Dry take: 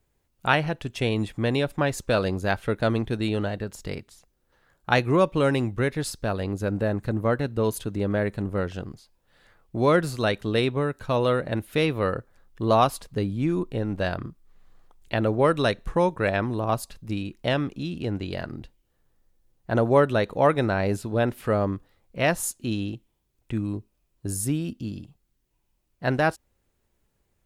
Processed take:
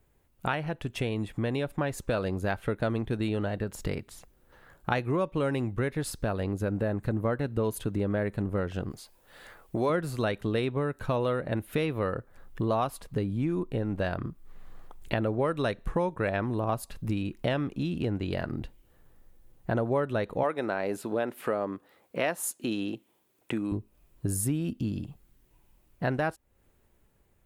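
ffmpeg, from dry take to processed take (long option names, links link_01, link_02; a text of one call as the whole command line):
ffmpeg -i in.wav -filter_complex "[0:a]asettb=1/sr,asplit=3[link_01][link_02][link_03];[link_01]atrim=end=8.904[link_04];[link_02]atrim=start=8.9:end=9.9,asetpts=PTS-STARTPTS,afade=type=in:duration=0.004:curve=qsin,afade=type=out:start_time=0.996:duration=0.004:curve=qsin,bass=frequency=250:gain=-8,treble=frequency=4000:gain=5[link_05];[link_03]atrim=start=9.896[link_06];[link_04][link_05]acrossfade=duration=0.004:curve1=hsin:curve2=qsin[link_07];[link_07][link_06]acrossfade=duration=0.004:curve1=qsin:curve2=hsin,asettb=1/sr,asplit=3[link_08][link_09][link_10];[link_08]atrim=end=20.434[link_11];[link_09]atrim=start=20.43:end=23.72,asetpts=PTS-STARTPTS,afade=type=in:duration=0.004:curve=qsin,afade=type=out:start_time=3.286:duration=0.004:curve=qsin,highpass=280[link_12];[link_10]atrim=start=23.716[link_13];[link_11][link_12]acrossfade=duration=0.004:curve1=hsin:curve2=qsin[link_14];[link_14][link_13]acrossfade=duration=0.004:curve1=qsin:curve2=hsin,dynaudnorm=framelen=530:gausssize=7:maxgain=8dB,equalizer=frequency=5300:width_type=o:width=1.4:gain=-6.5,acompressor=threshold=-35dB:ratio=3,volume=4.5dB" out.wav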